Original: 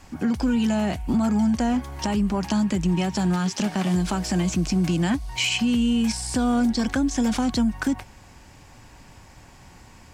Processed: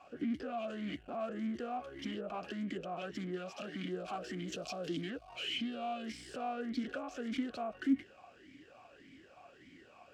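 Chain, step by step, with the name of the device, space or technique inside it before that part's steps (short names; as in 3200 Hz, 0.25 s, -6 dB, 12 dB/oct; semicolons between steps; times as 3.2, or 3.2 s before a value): talk box (tube stage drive 30 dB, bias 0.45; vowel sweep a-i 1.7 Hz); 4.52–5.02 resonant high shelf 2900 Hz +8.5 dB, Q 1.5; gain +7 dB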